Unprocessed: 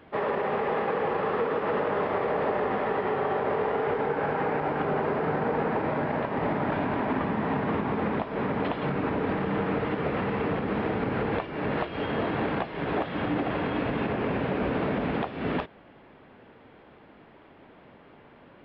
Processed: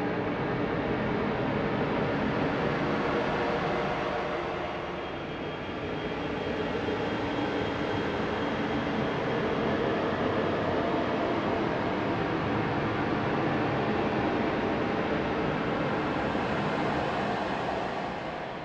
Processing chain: self-modulated delay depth 0.14 ms; Paulstretch 17×, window 0.25 s, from 11.6

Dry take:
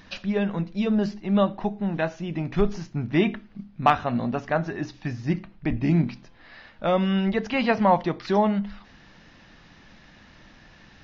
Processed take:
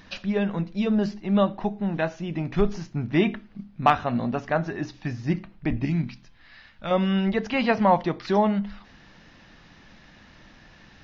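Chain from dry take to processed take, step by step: 5.85–6.91 bell 490 Hz -11 dB 2.4 oct

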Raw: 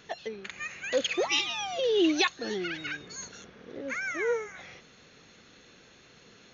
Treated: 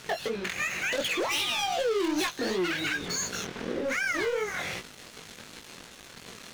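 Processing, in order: sample leveller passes 5; compressor 6:1, threshold -29 dBFS, peak gain reduction 12 dB; chorus 2.7 Hz, delay 16 ms, depth 7.7 ms; gain +3 dB

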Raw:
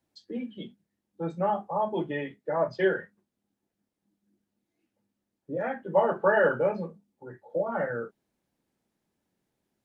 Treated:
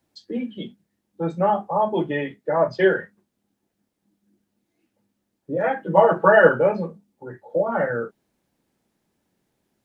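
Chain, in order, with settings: 5.63–6.49 comb 6.2 ms, depth 79%; gain +7 dB

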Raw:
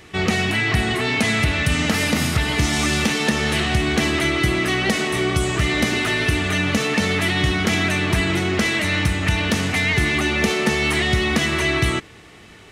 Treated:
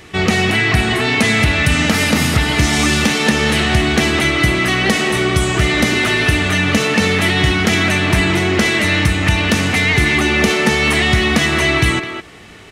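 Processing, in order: speakerphone echo 0.21 s, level -7 dB; gain +5 dB

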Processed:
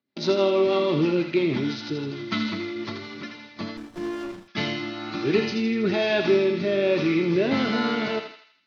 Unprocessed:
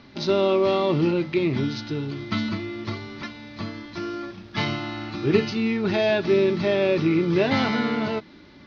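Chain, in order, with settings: HPF 180 Hz 12 dB/oct; gate -40 dBFS, range -34 dB; in parallel at +1 dB: limiter -15 dBFS, peak gain reduction 8 dB; on the sum: rotary speaker horn 6.3 Hz, later 1.1 Hz, at 2.57; on a send: thinning echo 81 ms, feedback 54%, high-pass 900 Hz, level -5 dB; 3.77–4.48 on the sum: running maximum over 17 samples; gain -4 dB

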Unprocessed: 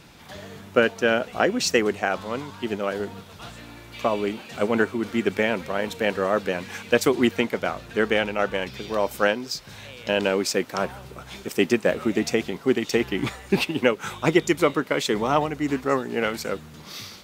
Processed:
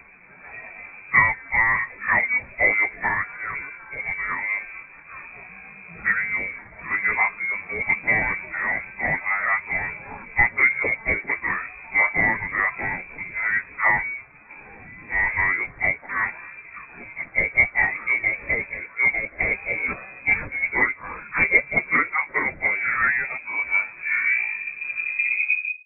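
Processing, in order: tape stop at the end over 2.06 s; plain phase-vocoder stretch 1.5×; inverted band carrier 2500 Hz; gain +3 dB

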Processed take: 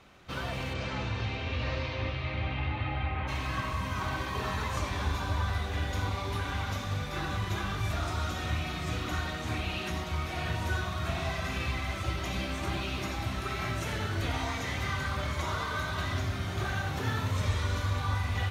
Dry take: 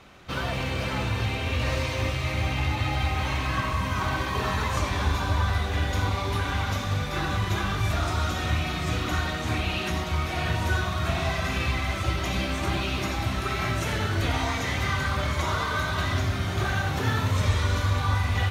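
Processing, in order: 0.73–3.27 LPF 7300 Hz -> 2700 Hz 24 dB/oct; gain -6 dB

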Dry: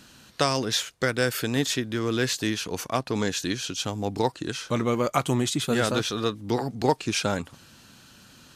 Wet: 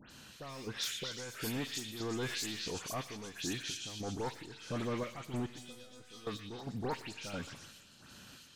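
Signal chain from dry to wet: overloaded stage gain 22.5 dB; limiter -29 dBFS, peak gain reduction 6.5 dB; chopper 1.5 Hz, depth 65%, duty 55%; dispersion highs, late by 0.109 s, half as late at 2800 Hz; 5.46–6.27 resonator 250 Hz, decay 0.48 s, harmonics all, mix 90%; delay with a stepping band-pass 0.12 s, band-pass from 2500 Hz, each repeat 0.7 oct, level -2 dB; Schroeder reverb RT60 1.6 s, combs from 29 ms, DRR 16.5 dB; 2.26–2.79 fast leveller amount 50%; gain -3 dB

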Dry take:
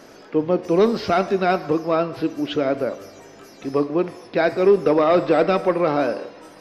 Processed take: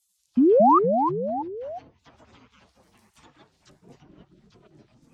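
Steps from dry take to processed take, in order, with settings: speed glide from 94% -> 163%; spectral gate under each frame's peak -30 dB weak; HPF 49 Hz; bell 1900 Hz -12.5 dB 2.3 oct; treble ducked by the level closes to 380 Hz, closed at -42.5 dBFS; painted sound rise, 0.37–0.79, 230–1300 Hz -16 dBFS; echoes that change speed 0.155 s, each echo -3 st, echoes 3, each echo -6 dB

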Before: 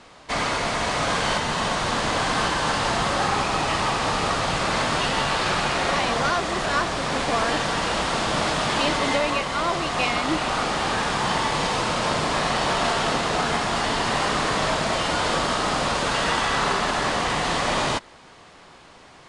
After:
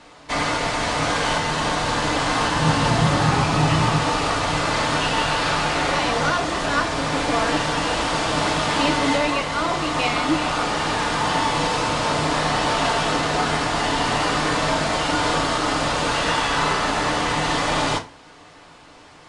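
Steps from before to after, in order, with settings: 2.56–3.99 bell 140 Hz +12.5 dB 1.3 oct; FDN reverb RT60 0.31 s, low-frequency decay 1.2×, high-frequency decay 0.85×, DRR 3.5 dB

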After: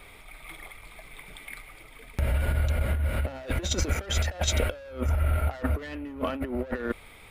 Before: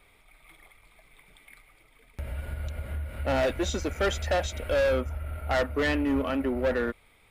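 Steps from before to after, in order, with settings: negative-ratio compressor -33 dBFS, ratio -0.5; gain +6 dB

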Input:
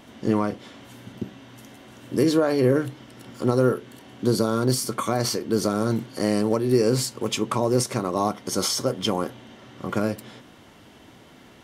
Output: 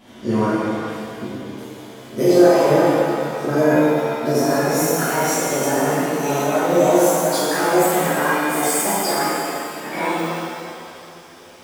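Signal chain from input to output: gliding pitch shift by +9.5 st starting unshifted; shimmer reverb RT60 2.2 s, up +7 st, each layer -8 dB, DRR -11.5 dB; gain -5.5 dB

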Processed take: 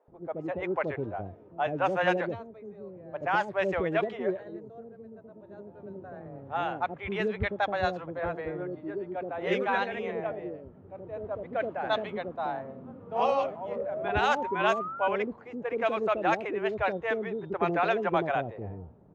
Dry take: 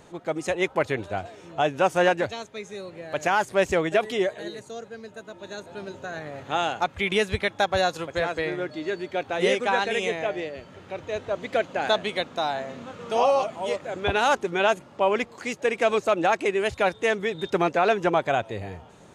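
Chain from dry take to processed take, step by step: bands offset in time highs, lows 80 ms, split 510 Hz; painted sound rise, 13.77–15.08, 540–1500 Hz -31 dBFS; low-pass opened by the level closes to 450 Hz, open at -13.5 dBFS; gain -3 dB

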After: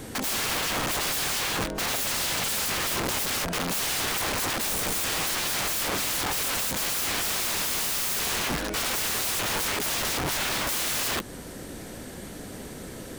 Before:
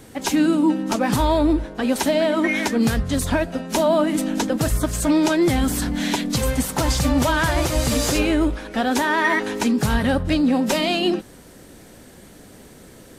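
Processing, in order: in parallel at -1.5 dB: compressor 5:1, threshold -28 dBFS, peak gain reduction 13 dB; on the sum: wrapped overs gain 23 dB

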